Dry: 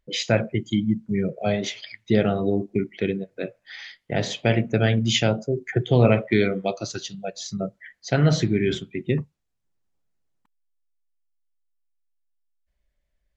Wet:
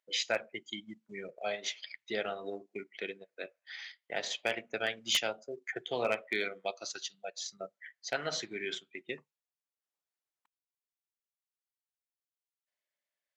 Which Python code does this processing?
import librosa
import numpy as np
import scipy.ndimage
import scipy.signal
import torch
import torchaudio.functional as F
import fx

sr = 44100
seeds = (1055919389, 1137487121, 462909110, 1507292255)

y = scipy.signal.sosfilt(scipy.signal.bessel(2, 850.0, 'highpass', norm='mag', fs=sr, output='sos'), x)
y = 10.0 ** (-14.5 / 20.0) * (np.abs((y / 10.0 ** (-14.5 / 20.0) + 3.0) % 4.0 - 2.0) - 1.0)
y = fx.transient(y, sr, attack_db=1, sustain_db=-6)
y = F.gain(torch.from_numpy(y), -5.5).numpy()